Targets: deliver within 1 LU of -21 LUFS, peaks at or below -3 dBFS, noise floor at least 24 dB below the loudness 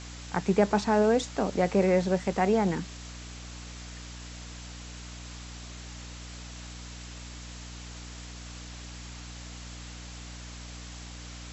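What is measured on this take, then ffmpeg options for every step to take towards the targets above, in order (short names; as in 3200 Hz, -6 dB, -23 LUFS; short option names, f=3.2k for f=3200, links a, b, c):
hum 60 Hz; harmonics up to 300 Hz; hum level -42 dBFS; noise floor -43 dBFS; noise floor target -51 dBFS; loudness -26.5 LUFS; peak -10.5 dBFS; loudness target -21.0 LUFS
-> -af "bandreject=f=60:t=h:w=4,bandreject=f=120:t=h:w=4,bandreject=f=180:t=h:w=4,bandreject=f=240:t=h:w=4,bandreject=f=300:t=h:w=4"
-af "afftdn=nr=8:nf=-43"
-af "volume=5.5dB"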